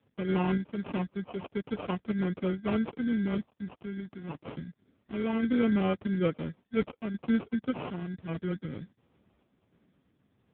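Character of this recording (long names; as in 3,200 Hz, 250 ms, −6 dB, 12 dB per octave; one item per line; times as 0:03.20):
phaser sweep stages 6, 0.19 Hz, lowest notch 590–2,400 Hz
sample-and-hold tremolo
aliases and images of a low sample rate 1,800 Hz, jitter 0%
AMR narrowband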